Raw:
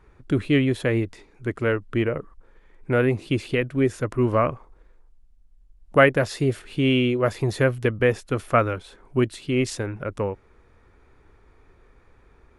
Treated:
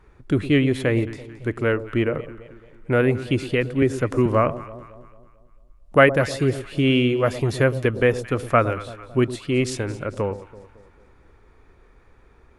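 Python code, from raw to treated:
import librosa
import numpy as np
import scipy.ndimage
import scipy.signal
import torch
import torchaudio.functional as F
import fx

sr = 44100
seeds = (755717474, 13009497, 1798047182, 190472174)

y = fx.echo_alternate(x, sr, ms=111, hz=920.0, feedback_pct=67, wet_db=-13.0)
y = fx.band_squash(y, sr, depth_pct=70, at=(3.82, 4.26))
y = F.gain(torch.from_numpy(y), 1.5).numpy()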